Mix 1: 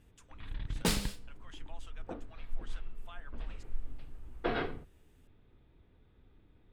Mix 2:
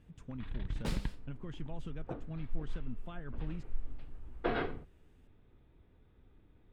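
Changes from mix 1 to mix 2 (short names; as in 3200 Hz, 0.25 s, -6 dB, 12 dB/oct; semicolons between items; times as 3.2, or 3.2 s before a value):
speech: remove HPF 730 Hz 24 dB/oct; second sound -9.0 dB; master: add high shelf 5300 Hz -11 dB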